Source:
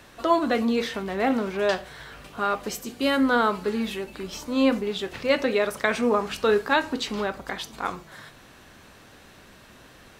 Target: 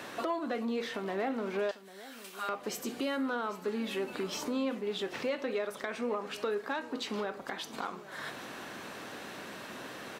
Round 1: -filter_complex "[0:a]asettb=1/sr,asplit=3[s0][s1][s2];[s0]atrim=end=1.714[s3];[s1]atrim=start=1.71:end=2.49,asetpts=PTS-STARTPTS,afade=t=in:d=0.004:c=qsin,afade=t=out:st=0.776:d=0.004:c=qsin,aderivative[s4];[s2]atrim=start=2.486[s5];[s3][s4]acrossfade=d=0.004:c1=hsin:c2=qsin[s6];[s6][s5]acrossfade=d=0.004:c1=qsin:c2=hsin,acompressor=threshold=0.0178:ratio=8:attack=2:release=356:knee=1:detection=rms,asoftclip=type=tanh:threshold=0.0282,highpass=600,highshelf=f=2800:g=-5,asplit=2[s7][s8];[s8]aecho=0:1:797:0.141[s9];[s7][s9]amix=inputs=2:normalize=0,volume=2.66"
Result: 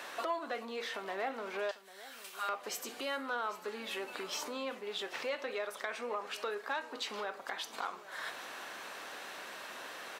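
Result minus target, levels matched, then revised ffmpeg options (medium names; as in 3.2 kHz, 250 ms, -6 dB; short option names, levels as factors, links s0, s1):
250 Hz band -9.0 dB
-filter_complex "[0:a]asettb=1/sr,asplit=3[s0][s1][s2];[s0]atrim=end=1.714[s3];[s1]atrim=start=1.71:end=2.49,asetpts=PTS-STARTPTS,afade=t=in:d=0.004:c=qsin,afade=t=out:st=0.776:d=0.004:c=qsin,aderivative[s4];[s2]atrim=start=2.486[s5];[s3][s4]acrossfade=d=0.004:c1=hsin:c2=qsin[s6];[s6][s5]acrossfade=d=0.004:c1=qsin:c2=hsin,acompressor=threshold=0.0178:ratio=8:attack=2:release=356:knee=1:detection=rms,asoftclip=type=tanh:threshold=0.0282,highpass=220,highshelf=f=2800:g=-5,asplit=2[s7][s8];[s8]aecho=0:1:797:0.141[s9];[s7][s9]amix=inputs=2:normalize=0,volume=2.66"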